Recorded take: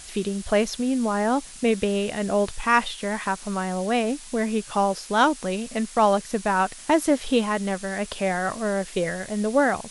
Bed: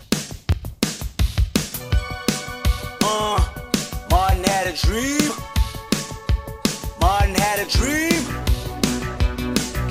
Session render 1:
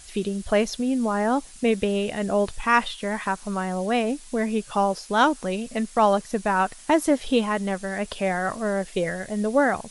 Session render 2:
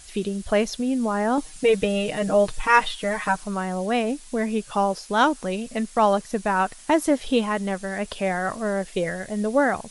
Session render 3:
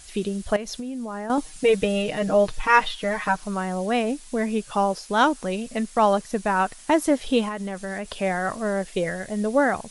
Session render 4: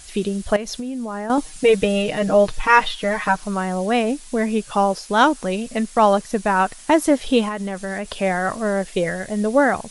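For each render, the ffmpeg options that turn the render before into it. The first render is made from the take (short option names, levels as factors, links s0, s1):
-af "afftdn=nr=6:nf=-42"
-filter_complex "[0:a]asettb=1/sr,asplit=3[s0][s1][s2];[s0]atrim=end=1.374[s3];[s1]atrim=start=1.37:end=3.44,asetpts=PTS-STARTPTS,afade=t=in:d=0.004:c=qsin,afade=t=out:st=2.066:d=0.004:c=qsin,aecho=1:1:6.5:0.89,atrim=end_sample=91287[s4];[s2]atrim=start=3.436[s5];[s3][s4]acrossfade=d=0.004:c1=hsin:c2=qsin[s6];[s6][s5]acrossfade=d=0.004:c1=qsin:c2=hsin"
-filter_complex "[0:a]asettb=1/sr,asplit=3[s0][s1][s2];[s0]atrim=end=0.564[s3];[s1]atrim=start=0.56:end=1.3,asetpts=PTS-STARTPTS,afade=t=in:d=0.004:c=qsin,afade=t=out:st=0.736:d=0.004:c=qsin,acompressor=threshold=0.0398:ratio=12:attack=3.2:release=140:knee=1:detection=peak[s4];[s2]atrim=start=1.296[s5];[s3][s4]acrossfade=d=0.004:c1=hsin:c2=qsin[s6];[s6][s5]acrossfade=d=0.004:c1=qsin:c2=hsin,asettb=1/sr,asplit=3[s7][s8][s9];[s7]atrim=end=2.024[s10];[s8]atrim=start=2.02:end=3.43,asetpts=PTS-STARTPTS,afade=t=in:d=0.004:c=qsin,afade=t=out:st=1.406:d=0.004:c=qsin,equalizer=f=8700:w=1.9:g=-6.5[s11];[s9]atrim=start=3.426[s12];[s10][s11]acrossfade=d=0.004:c1=hsin:c2=qsin[s13];[s13][s12]acrossfade=d=0.004:c1=qsin:c2=hsin,asettb=1/sr,asplit=3[s14][s15][s16];[s14]atrim=end=7.484[s17];[s15]atrim=start=7.48:end=8.2,asetpts=PTS-STARTPTS,afade=t=in:d=0.004:c=qsin,afade=t=out:st=0.716:d=0.004:c=qsin,acompressor=threshold=0.0501:ratio=6:attack=3.2:release=140:knee=1:detection=peak[s18];[s16]atrim=start=8.196[s19];[s17][s18]acrossfade=d=0.004:c1=hsin:c2=qsin[s20];[s20][s19]acrossfade=d=0.004:c1=qsin:c2=hsin"
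-af "volume=1.58,alimiter=limit=0.891:level=0:latency=1"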